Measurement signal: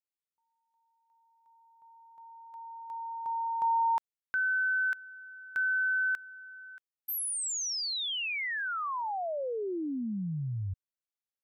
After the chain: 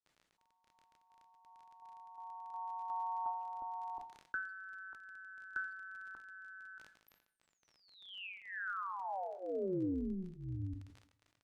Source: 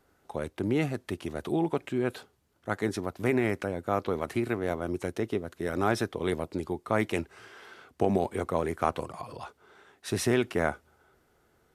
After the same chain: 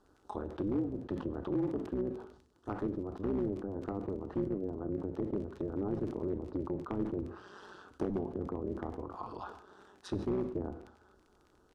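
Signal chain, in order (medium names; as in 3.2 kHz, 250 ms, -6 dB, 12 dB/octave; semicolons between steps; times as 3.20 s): peaking EQ 1.6 kHz -3 dB 2.9 oct; static phaser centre 580 Hz, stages 6; AM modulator 190 Hz, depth 60%; in parallel at +2 dB: compression 6:1, threshold -46 dBFS; on the sum: low-pass that closes with the level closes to 430 Hz, closed at -31.5 dBFS; hard clipper -26 dBFS; crackle 30 per s -48 dBFS; Bessel low-pass 8.4 kHz, order 2; treble shelf 6 kHz -8 dB; speakerphone echo 150 ms, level -24 dB; two-slope reverb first 0.47 s, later 1.9 s, from -25 dB, DRR 12.5 dB; decay stretcher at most 88 dB/s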